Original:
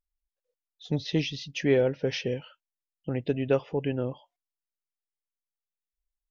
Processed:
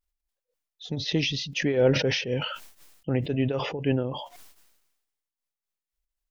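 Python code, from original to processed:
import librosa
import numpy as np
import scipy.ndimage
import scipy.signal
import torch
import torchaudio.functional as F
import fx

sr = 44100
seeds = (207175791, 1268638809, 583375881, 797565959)

y = fx.tremolo_shape(x, sr, shape='triangle', hz=3.9, depth_pct=90)
y = fx.sustainer(y, sr, db_per_s=51.0)
y = F.gain(torch.from_numpy(y), 6.0).numpy()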